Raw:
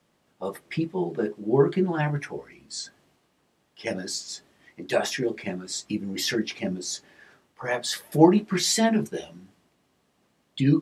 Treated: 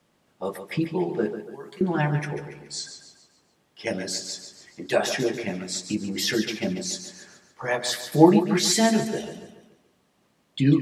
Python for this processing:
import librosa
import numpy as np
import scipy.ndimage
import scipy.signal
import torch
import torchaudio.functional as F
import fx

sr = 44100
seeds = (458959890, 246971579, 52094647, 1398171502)

p1 = fx.pre_emphasis(x, sr, coefficient=0.97, at=(1.35, 1.81))
p2 = p1 + fx.echo_feedback(p1, sr, ms=142, feedback_pct=44, wet_db=-10.0, dry=0)
y = p2 * librosa.db_to_amplitude(1.5)